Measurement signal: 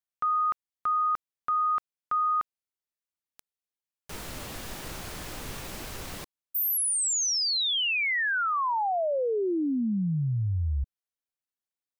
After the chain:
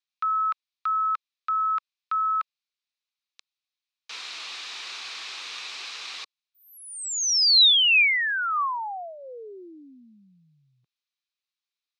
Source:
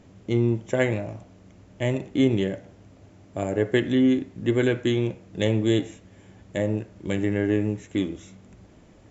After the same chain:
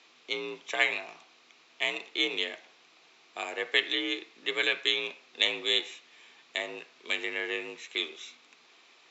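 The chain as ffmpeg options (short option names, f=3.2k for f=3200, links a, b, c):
-af "highpass=480,equalizer=f=540:t=q:w=4:g=-8,equalizer=f=1.1k:t=q:w=4:g=6,equalizer=f=2.4k:t=q:w=4:g=7,equalizer=f=3.8k:t=q:w=4:g=6,lowpass=f=5k:w=0.5412,lowpass=f=5k:w=1.3066,afreqshift=55,crystalizer=i=9:c=0,volume=-8dB"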